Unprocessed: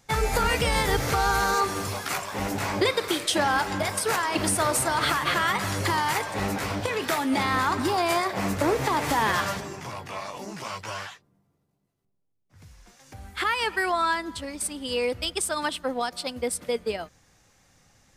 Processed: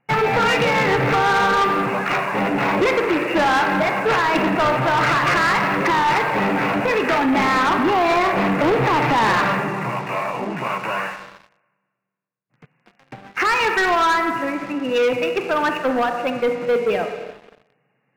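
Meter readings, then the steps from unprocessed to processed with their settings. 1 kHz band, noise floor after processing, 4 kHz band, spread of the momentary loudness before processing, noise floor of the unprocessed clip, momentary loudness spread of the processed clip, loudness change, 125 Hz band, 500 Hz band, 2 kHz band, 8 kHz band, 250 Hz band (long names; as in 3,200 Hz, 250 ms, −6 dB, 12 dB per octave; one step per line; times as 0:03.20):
+8.0 dB, −70 dBFS, +2.0 dB, 12 LU, −73 dBFS, 8 LU, +7.0 dB, +5.0 dB, +8.5 dB, +8.0 dB, −7.5 dB, +8.5 dB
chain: spring reverb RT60 1.6 s, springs 31/39/58 ms, chirp 60 ms, DRR 7 dB
brick-wall band-pass 110–2,900 Hz
leveller curve on the samples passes 3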